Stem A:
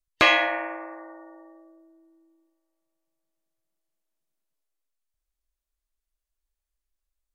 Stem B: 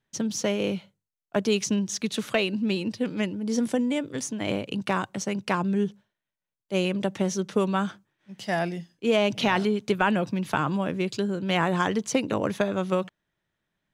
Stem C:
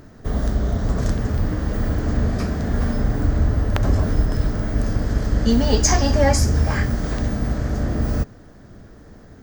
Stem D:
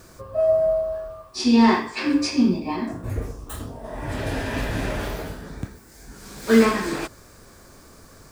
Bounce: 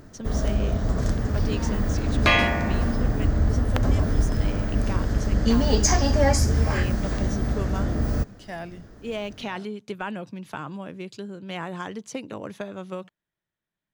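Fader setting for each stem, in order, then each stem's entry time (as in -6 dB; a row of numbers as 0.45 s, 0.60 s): -1.5 dB, -9.0 dB, -3.0 dB, -20.0 dB; 2.05 s, 0.00 s, 0.00 s, 0.00 s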